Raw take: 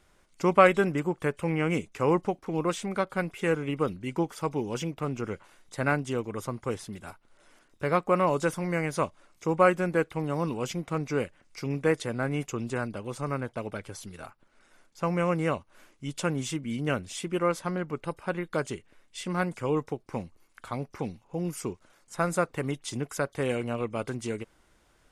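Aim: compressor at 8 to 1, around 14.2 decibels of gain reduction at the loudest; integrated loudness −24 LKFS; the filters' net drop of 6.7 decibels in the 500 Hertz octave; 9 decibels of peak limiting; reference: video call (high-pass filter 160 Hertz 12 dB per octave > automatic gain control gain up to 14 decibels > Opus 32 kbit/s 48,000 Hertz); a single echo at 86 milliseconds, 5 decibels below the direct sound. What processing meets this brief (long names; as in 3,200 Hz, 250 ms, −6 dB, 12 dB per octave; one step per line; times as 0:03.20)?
parametric band 500 Hz −8 dB
downward compressor 8 to 1, threshold −30 dBFS
brickwall limiter −28 dBFS
high-pass filter 160 Hz 12 dB per octave
single-tap delay 86 ms −5 dB
automatic gain control gain up to 14 dB
level +5.5 dB
Opus 32 kbit/s 48,000 Hz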